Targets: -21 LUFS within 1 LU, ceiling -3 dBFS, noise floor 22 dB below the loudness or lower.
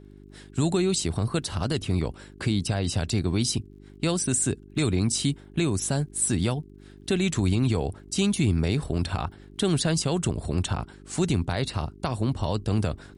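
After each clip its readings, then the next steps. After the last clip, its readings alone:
ticks 32/s; hum 50 Hz; harmonics up to 400 Hz; hum level -48 dBFS; loudness -26.5 LUFS; peak -13.0 dBFS; loudness target -21.0 LUFS
-> de-click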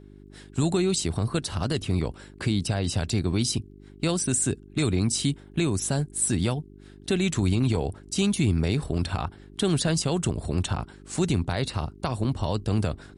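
ticks 0/s; hum 50 Hz; harmonics up to 400 Hz; hum level -48 dBFS
-> de-hum 50 Hz, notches 8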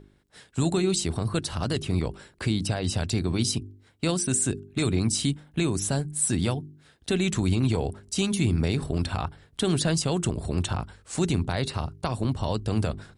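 hum none; loudness -27.0 LUFS; peak -12.5 dBFS; loudness target -21.0 LUFS
-> gain +6 dB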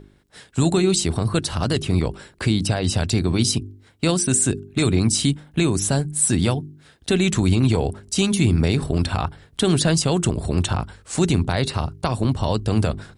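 loudness -21.0 LUFS; peak -6.5 dBFS; noise floor -54 dBFS

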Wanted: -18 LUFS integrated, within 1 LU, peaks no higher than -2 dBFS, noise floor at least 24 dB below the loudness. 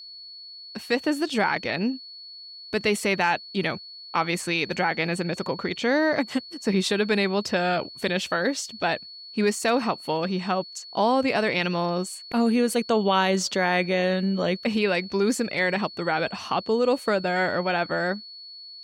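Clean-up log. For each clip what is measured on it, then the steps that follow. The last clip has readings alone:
steady tone 4400 Hz; tone level -40 dBFS; loudness -25.0 LUFS; peak -10.0 dBFS; loudness target -18.0 LUFS
-> notch 4400 Hz, Q 30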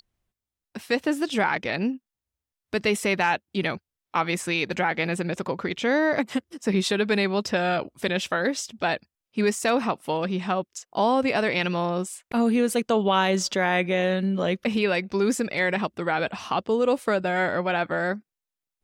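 steady tone none; loudness -25.0 LUFS; peak -10.0 dBFS; loudness target -18.0 LUFS
-> gain +7 dB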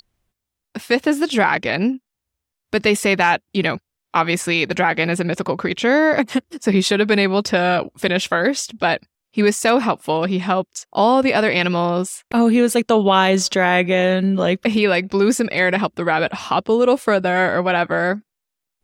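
loudness -18.0 LUFS; peak -3.0 dBFS; noise floor -82 dBFS

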